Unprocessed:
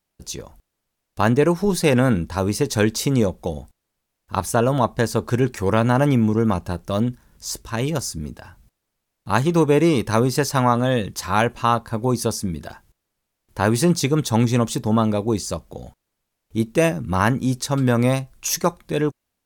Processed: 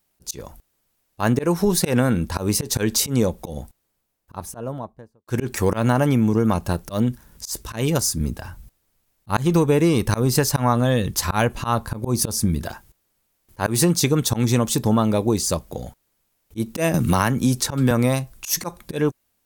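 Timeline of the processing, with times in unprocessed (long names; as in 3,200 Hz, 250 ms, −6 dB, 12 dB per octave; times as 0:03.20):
0:03.46–0:05.27: fade out and dull
0:08.20–0:12.67: low-shelf EQ 110 Hz +8.5 dB
0:16.94–0:17.91: multiband upward and downward compressor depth 70%
whole clip: high-shelf EQ 10,000 Hz +10 dB; volume swells 154 ms; downward compressor 3 to 1, threshold −19 dBFS; level +4 dB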